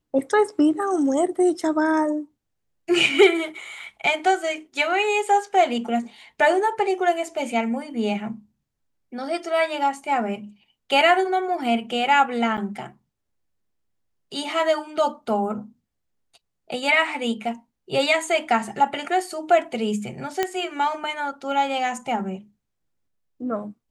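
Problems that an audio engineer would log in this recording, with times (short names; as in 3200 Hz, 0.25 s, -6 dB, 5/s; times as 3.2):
12.57–12.58 gap 7.8 ms
20.43 pop -8 dBFS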